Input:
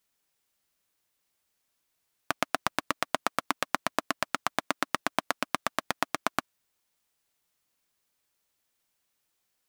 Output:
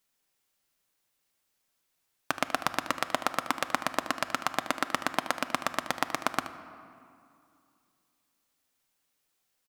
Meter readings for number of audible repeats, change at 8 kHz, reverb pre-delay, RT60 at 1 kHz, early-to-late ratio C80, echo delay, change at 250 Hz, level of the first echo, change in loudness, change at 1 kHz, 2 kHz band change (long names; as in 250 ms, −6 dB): 1, +0.5 dB, 4 ms, 2.5 s, 13.5 dB, 76 ms, +0.5 dB, −13.5 dB, +0.5 dB, +0.5 dB, +0.5 dB